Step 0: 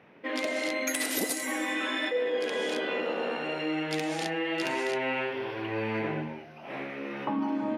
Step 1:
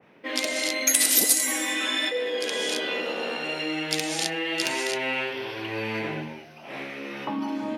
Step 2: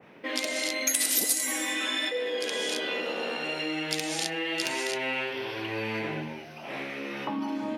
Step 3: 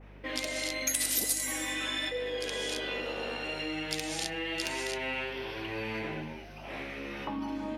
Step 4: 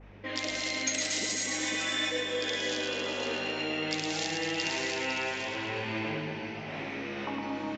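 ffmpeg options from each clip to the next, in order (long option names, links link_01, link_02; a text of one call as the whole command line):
ffmpeg -i in.wav -filter_complex "[0:a]acrossover=split=540|4000[link_01][link_02][link_03];[link_03]acontrast=74[link_04];[link_01][link_02][link_04]amix=inputs=3:normalize=0,adynamicequalizer=threshold=0.00562:dfrequency=2200:dqfactor=0.7:tfrequency=2200:tqfactor=0.7:attack=5:release=100:ratio=0.375:range=3.5:mode=boostabove:tftype=highshelf" out.wav
ffmpeg -i in.wav -af "acompressor=threshold=-42dB:ratio=1.5,volume=3.5dB" out.wav
ffmpeg -i in.wav -af "aeval=exprs='val(0)+0.00501*(sin(2*PI*50*n/s)+sin(2*PI*2*50*n/s)/2+sin(2*PI*3*50*n/s)/3+sin(2*PI*4*50*n/s)/4+sin(2*PI*5*50*n/s)/5)':channel_layout=same,volume=-4dB" out.wav
ffmpeg -i in.wav -filter_complex "[0:a]asplit=2[link_01][link_02];[link_02]aecho=0:1:110|231|364.1|510.5|671.6:0.631|0.398|0.251|0.158|0.1[link_03];[link_01][link_03]amix=inputs=2:normalize=0,aresample=16000,aresample=44100,asplit=2[link_04][link_05];[link_05]aecho=0:1:506:0.422[link_06];[link_04][link_06]amix=inputs=2:normalize=0" out.wav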